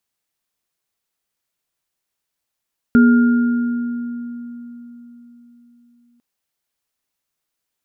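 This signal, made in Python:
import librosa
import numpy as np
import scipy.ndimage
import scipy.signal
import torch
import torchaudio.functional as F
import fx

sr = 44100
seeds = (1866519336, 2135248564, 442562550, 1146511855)

y = fx.additive_free(sr, length_s=3.25, hz=239.0, level_db=-6.5, upper_db=(-15.0, -12), decay_s=4.05, upper_decays_s=(1.94, 2.63), upper_hz=(420.0, 1410.0))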